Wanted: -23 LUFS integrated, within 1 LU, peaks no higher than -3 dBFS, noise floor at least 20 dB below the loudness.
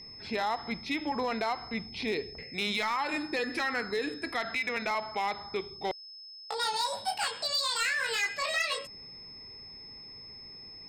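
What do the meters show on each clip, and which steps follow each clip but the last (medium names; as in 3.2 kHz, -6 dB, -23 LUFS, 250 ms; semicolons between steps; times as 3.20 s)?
clipped samples 0.6%; clipping level -23.5 dBFS; steady tone 5.2 kHz; tone level -45 dBFS; loudness -31.5 LUFS; peak level -23.5 dBFS; loudness target -23.0 LUFS
-> clip repair -23.5 dBFS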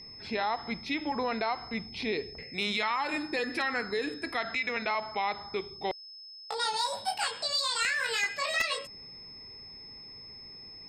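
clipped samples 0.0%; steady tone 5.2 kHz; tone level -45 dBFS
-> band-stop 5.2 kHz, Q 30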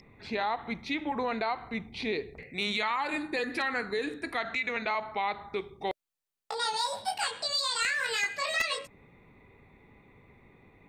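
steady tone not found; loudness -31.5 LUFS; peak level -14.5 dBFS; loudness target -23.0 LUFS
-> trim +8.5 dB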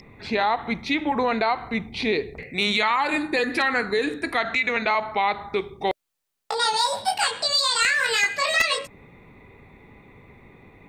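loudness -23.0 LUFS; peak level -6.0 dBFS; noise floor -76 dBFS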